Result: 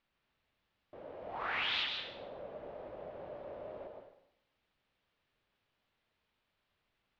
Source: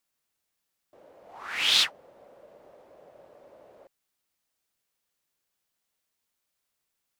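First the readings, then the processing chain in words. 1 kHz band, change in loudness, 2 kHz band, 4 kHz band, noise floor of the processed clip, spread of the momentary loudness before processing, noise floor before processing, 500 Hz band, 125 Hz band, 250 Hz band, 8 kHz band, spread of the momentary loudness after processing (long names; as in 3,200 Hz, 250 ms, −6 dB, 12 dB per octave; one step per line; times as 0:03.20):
0.0 dB, −16.0 dB, −6.0 dB, −12.5 dB, −83 dBFS, 10 LU, −81 dBFS, +5.5 dB, can't be measured, +2.0 dB, below −30 dB, 18 LU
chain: low-pass filter 3,600 Hz 24 dB per octave
low-shelf EQ 150 Hz +9 dB
downward compressor 6 to 1, threshold −39 dBFS, peak gain reduction 17 dB
dense smooth reverb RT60 0.75 s, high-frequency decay 0.95×, pre-delay 110 ms, DRR 3 dB
level +4 dB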